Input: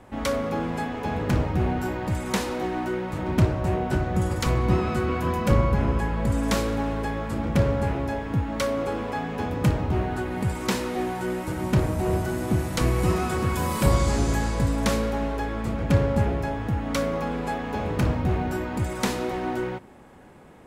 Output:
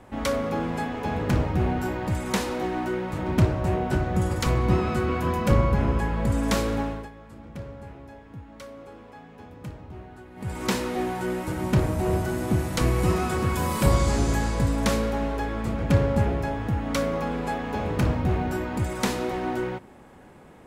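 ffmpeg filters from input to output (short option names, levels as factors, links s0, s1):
-filter_complex "[0:a]asplit=3[s0][s1][s2];[s0]atrim=end=7.1,asetpts=PTS-STARTPTS,afade=t=out:st=6.79:d=0.31:silence=0.149624[s3];[s1]atrim=start=7.1:end=10.35,asetpts=PTS-STARTPTS,volume=0.15[s4];[s2]atrim=start=10.35,asetpts=PTS-STARTPTS,afade=t=in:d=0.31:silence=0.149624[s5];[s3][s4][s5]concat=n=3:v=0:a=1"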